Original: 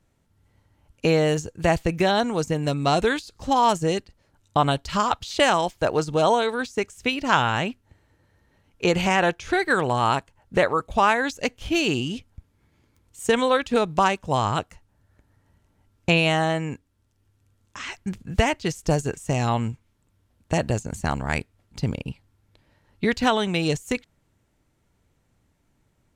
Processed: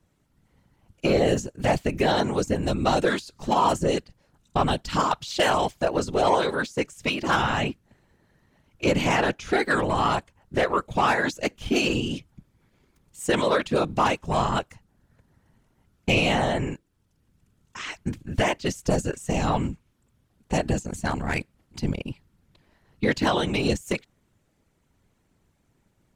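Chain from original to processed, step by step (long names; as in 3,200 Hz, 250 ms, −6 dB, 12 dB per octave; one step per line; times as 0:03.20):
soft clipping −12.5 dBFS, distortion −17 dB
random phases in short frames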